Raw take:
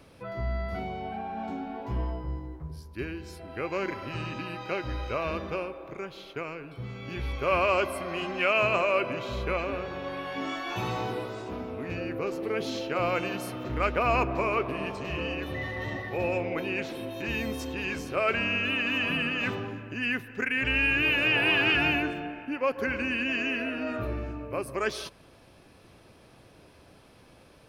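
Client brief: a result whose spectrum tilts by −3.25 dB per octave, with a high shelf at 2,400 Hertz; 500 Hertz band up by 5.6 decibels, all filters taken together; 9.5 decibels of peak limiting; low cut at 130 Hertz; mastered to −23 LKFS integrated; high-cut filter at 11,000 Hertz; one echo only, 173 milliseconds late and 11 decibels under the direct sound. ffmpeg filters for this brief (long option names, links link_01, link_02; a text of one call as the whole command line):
ffmpeg -i in.wav -af "highpass=130,lowpass=11000,equalizer=frequency=500:width_type=o:gain=7,highshelf=frequency=2400:gain=-3,alimiter=limit=-20.5dB:level=0:latency=1,aecho=1:1:173:0.282,volume=7.5dB" out.wav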